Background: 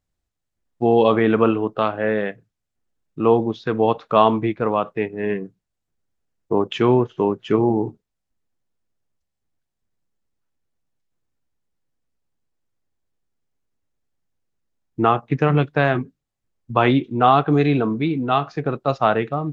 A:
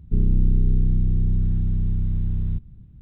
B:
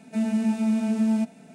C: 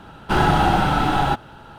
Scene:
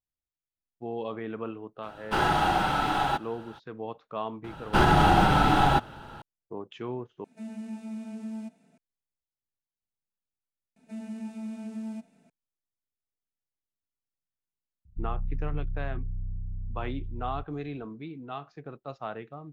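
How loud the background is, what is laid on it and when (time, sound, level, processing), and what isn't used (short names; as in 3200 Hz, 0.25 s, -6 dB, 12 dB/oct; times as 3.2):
background -19 dB
1.82 add C -5 dB, fades 0.02 s + low shelf 310 Hz -9 dB
4.44 add C -2 dB + limiter -7.5 dBFS
7.24 replace with B -14.5 dB
10.76 add B -14 dB
14.85 add A -13 dB + formant sharpening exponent 2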